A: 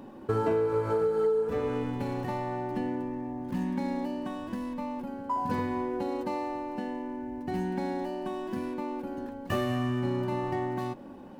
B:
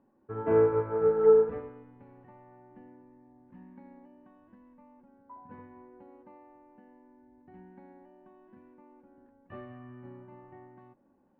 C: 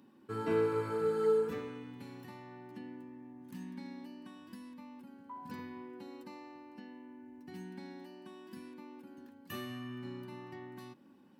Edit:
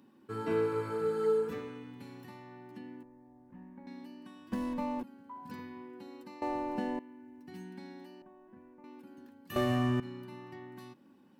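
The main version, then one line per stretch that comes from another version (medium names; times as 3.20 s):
C
3.03–3.87 s: from B
4.52–5.03 s: from A
6.42–6.99 s: from A
8.22–8.84 s: from B
9.56–10.00 s: from A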